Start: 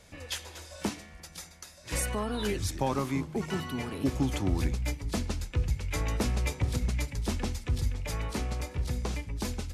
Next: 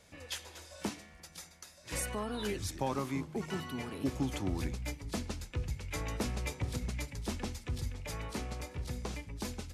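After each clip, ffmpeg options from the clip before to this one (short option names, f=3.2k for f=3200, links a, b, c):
-af "lowshelf=f=65:g=-8,volume=-4.5dB"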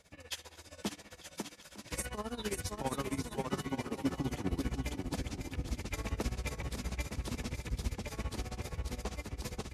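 -filter_complex "[0:a]asplit=2[a][b];[b]aecho=0:1:550|907.5|1140|1291|1389:0.631|0.398|0.251|0.158|0.1[c];[a][c]amix=inputs=2:normalize=0,tremolo=f=15:d=0.86,volume=1dB"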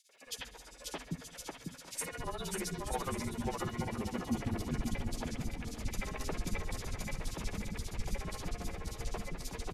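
-filter_complex "[0:a]acrossover=split=340|3200[a][b][c];[b]adelay=90[d];[a]adelay=260[e];[e][d][c]amix=inputs=3:normalize=0,afreqshift=-37,volume=1.5dB"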